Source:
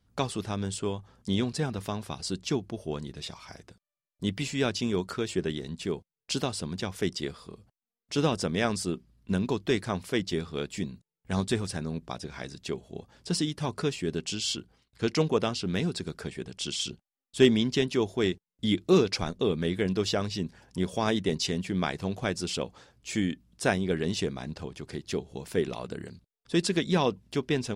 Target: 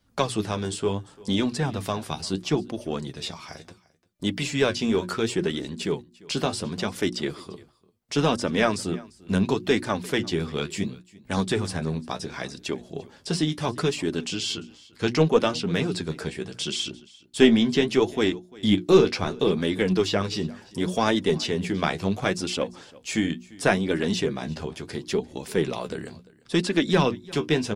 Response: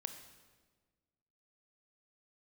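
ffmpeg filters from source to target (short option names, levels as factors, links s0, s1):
-filter_complex "[0:a]lowshelf=f=90:g=-7.5,bandreject=f=60:t=h:w=6,bandreject=f=120:t=h:w=6,bandreject=f=180:t=h:w=6,bandreject=f=240:t=h:w=6,bandreject=f=300:t=h:w=6,bandreject=f=360:t=h:w=6,acrossover=split=480|3200[s0][s1][s2];[s2]alimiter=level_in=2:limit=0.0631:level=0:latency=1:release=263,volume=0.501[s3];[s0][s1][s3]amix=inputs=3:normalize=0,flanger=delay=3.3:depth=9.8:regen=41:speed=0.71:shape=sinusoidal,asplit=2[s4][s5];[s5]aeval=exprs='clip(val(0),-1,0.0266)':c=same,volume=0.376[s6];[s4][s6]amix=inputs=2:normalize=0,aecho=1:1:346:0.075,volume=2.37"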